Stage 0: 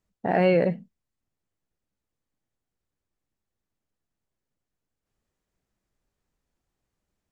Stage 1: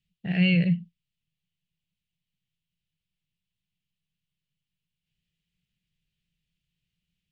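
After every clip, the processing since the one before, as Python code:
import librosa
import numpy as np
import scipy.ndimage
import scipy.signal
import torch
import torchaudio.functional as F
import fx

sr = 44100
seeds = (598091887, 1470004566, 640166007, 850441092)

y = fx.curve_eq(x, sr, hz=(100.0, 170.0, 240.0, 590.0, 950.0, 2900.0, 6200.0), db=(0, 12, -9, -15, -23, 14, -3))
y = y * librosa.db_to_amplitude(-3.0)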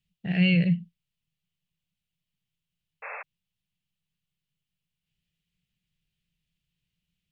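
y = fx.spec_paint(x, sr, seeds[0], shape='noise', start_s=3.02, length_s=0.21, low_hz=430.0, high_hz=2700.0, level_db=-38.0)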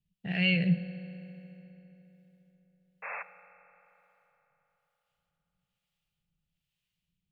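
y = fx.harmonic_tremolo(x, sr, hz=1.1, depth_pct=70, crossover_hz=500.0)
y = fx.rev_fdn(y, sr, rt60_s=3.9, lf_ratio=1.0, hf_ratio=0.65, size_ms=12.0, drr_db=11.5)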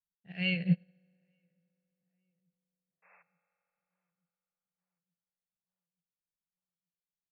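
y = fx.echo_filtered(x, sr, ms=880, feedback_pct=64, hz=1600.0, wet_db=-23.5)
y = fx.upward_expand(y, sr, threshold_db=-40.0, expansion=2.5)
y = y * librosa.db_to_amplitude(1.0)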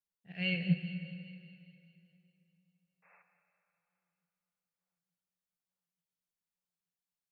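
y = fx.echo_wet_highpass(x, sr, ms=203, feedback_pct=61, hz=3000.0, wet_db=-11)
y = fx.rev_plate(y, sr, seeds[1], rt60_s=2.8, hf_ratio=0.8, predelay_ms=0, drr_db=7.5)
y = y * librosa.db_to_amplitude(-2.0)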